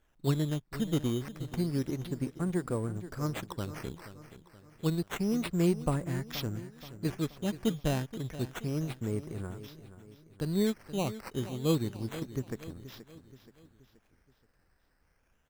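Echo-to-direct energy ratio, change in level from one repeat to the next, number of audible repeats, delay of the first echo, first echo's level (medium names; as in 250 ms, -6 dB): -13.0 dB, -6.5 dB, 4, 477 ms, -14.0 dB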